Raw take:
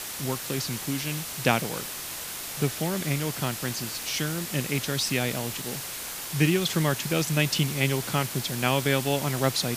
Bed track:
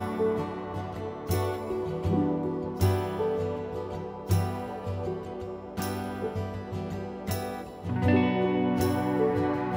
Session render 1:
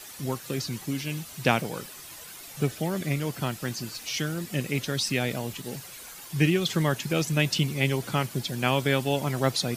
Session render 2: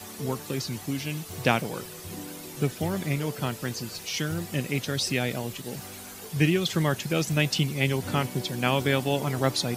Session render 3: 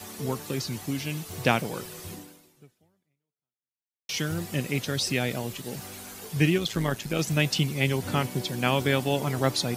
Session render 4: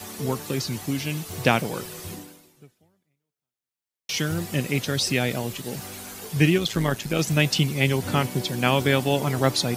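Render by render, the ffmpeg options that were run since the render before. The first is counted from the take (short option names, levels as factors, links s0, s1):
-af "afftdn=nr=11:nf=-36"
-filter_complex "[1:a]volume=0.2[s0];[0:a][s0]amix=inputs=2:normalize=0"
-filter_complex "[0:a]asettb=1/sr,asplit=3[s0][s1][s2];[s0]atrim=end=6.584[s3];[s1]atrim=start=6.58:end=7.19,asetpts=PTS-STARTPTS,afade=t=in:d=0.004:c=qsin,afade=t=out:st=0.606:d=0.004:c=qsin,tremolo=f=110:d=0.571[s4];[s2]atrim=start=7.186[s5];[s3][s4]acrossfade=d=0.004:c1=hsin:c2=qsin[s6];[s6][s5]acrossfade=d=0.004:c1=qsin:c2=hsin,asplit=2[s7][s8];[s7]atrim=end=4.09,asetpts=PTS-STARTPTS,afade=t=out:st=2.09:d=2:c=exp[s9];[s8]atrim=start=4.09,asetpts=PTS-STARTPTS,afade=t=in:d=0.004:c=hsin[s10];[s9][s10]concat=n=2:v=0:a=1"
-af "volume=1.5,alimiter=limit=0.708:level=0:latency=1"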